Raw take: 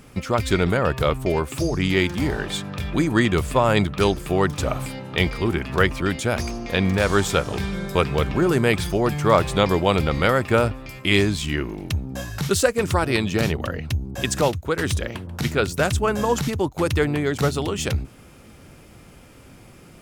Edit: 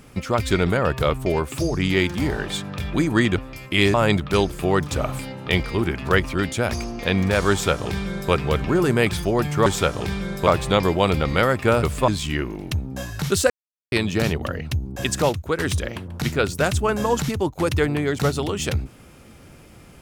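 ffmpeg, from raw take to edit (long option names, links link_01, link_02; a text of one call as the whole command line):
ffmpeg -i in.wav -filter_complex "[0:a]asplit=9[link_01][link_02][link_03][link_04][link_05][link_06][link_07][link_08][link_09];[link_01]atrim=end=3.362[link_10];[link_02]atrim=start=10.688:end=11.272[link_11];[link_03]atrim=start=3.608:end=9.332[link_12];[link_04]atrim=start=7.178:end=7.992[link_13];[link_05]atrim=start=9.328:end=10.692[link_14];[link_06]atrim=start=3.358:end=3.612[link_15];[link_07]atrim=start=11.268:end=12.69,asetpts=PTS-STARTPTS,afade=type=out:start_time=1.418:duration=0.004:curve=hsin[link_16];[link_08]atrim=start=12.69:end=13.11,asetpts=PTS-STARTPTS,volume=0[link_17];[link_09]atrim=start=13.11,asetpts=PTS-STARTPTS,afade=type=in:duration=0.004:curve=hsin[link_18];[link_10][link_11]acrossfade=duration=0.004:curve1=hsin:curve2=hsin[link_19];[link_19][link_12]acrossfade=duration=0.004:curve1=hsin:curve2=hsin[link_20];[link_20][link_13]acrossfade=duration=0.004:curve1=hsin:curve2=hsin[link_21];[link_21][link_14]acrossfade=duration=0.004:curve1=hsin:curve2=hsin[link_22];[link_22][link_15]acrossfade=duration=0.004:curve1=hsin:curve2=hsin[link_23];[link_16][link_17][link_18]concat=n=3:v=0:a=1[link_24];[link_23][link_24]acrossfade=duration=0.004:curve1=hsin:curve2=hsin" out.wav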